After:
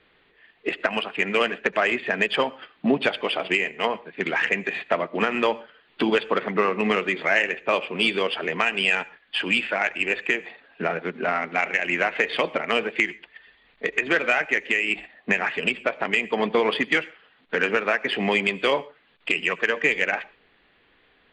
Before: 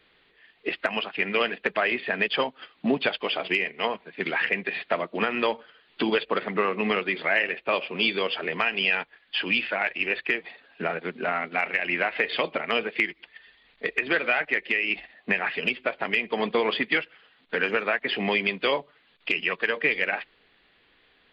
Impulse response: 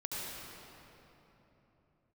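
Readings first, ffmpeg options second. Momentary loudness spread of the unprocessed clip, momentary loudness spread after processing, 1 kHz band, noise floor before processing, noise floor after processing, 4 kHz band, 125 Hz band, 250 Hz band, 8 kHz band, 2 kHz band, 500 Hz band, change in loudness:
7 LU, 6 LU, +3.0 dB, −63 dBFS, −61 dBFS, +1.0 dB, +3.0 dB, +3.0 dB, can't be measured, +2.5 dB, +3.0 dB, +2.5 dB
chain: -filter_complex "[0:a]adynamicsmooth=sensitivity=1:basefreq=3900,asplit=2[link_01][link_02];[1:a]atrim=start_sample=2205,afade=type=out:start_time=0.19:duration=0.01,atrim=end_sample=8820[link_03];[link_02][link_03]afir=irnorm=-1:irlink=0,volume=-17.5dB[link_04];[link_01][link_04]amix=inputs=2:normalize=0,aresample=22050,aresample=44100,volume=2.5dB"

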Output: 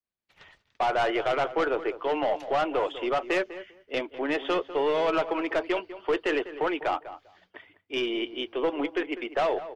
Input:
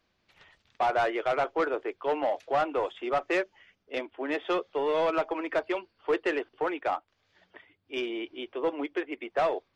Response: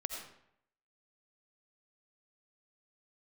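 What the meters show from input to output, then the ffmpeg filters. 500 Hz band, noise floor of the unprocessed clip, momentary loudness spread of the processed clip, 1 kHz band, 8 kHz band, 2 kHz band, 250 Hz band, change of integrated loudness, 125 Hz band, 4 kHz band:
+2.0 dB, −75 dBFS, 7 LU, +1.0 dB, can't be measured, +2.5 dB, +3.0 dB, +2.0 dB, +3.5 dB, +6.0 dB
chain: -filter_complex "[0:a]aeval=exprs='0.126*(cos(1*acos(clip(val(0)/0.126,-1,1)))-cos(1*PI/2))+0.00398*(cos(4*acos(clip(val(0)/0.126,-1,1)))-cos(4*PI/2))+0.00447*(cos(5*acos(clip(val(0)/0.126,-1,1)))-cos(5*PI/2))':channel_layout=same,adynamicequalizer=threshold=0.00126:dfrequency=3000:dqfactor=7.1:tfrequency=3000:tqfactor=7.1:attack=5:release=100:ratio=0.375:range=3:mode=boostabove:tftype=bell,alimiter=limit=-22dB:level=0:latency=1:release=26,asplit=2[link_01][link_02];[link_02]adelay=199,lowpass=frequency=1900:poles=1,volume=-13dB,asplit=2[link_03][link_04];[link_04]adelay=199,lowpass=frequency=1900:poles=1,volume=0.17[link_05];[link_01][link_03][link_05]amix=inputs=3:normalize=0,agate=range=-33dB:threshold=-56dB:ratio=3:detection=peak,volume=3dB"

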